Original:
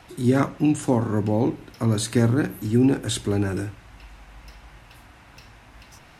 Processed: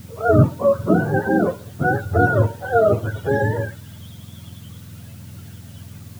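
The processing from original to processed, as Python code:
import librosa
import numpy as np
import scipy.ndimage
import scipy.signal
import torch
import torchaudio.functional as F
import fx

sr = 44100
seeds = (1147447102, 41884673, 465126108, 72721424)

p1 = fx.octave_mirror(x, sr, pivot_hz=410.0)
p2 = fx.low_shelf(p1, sr, hz=440.0, db=12.0)
p3 = fx.quant_dither(p2, sr, seeds[0], bits=6, dither='triangular')
p4 = p2 + (p3 * librosa.db_to_amplitude(-12.0))
y = p4 * librosa.db_to_amplitude(-1.5)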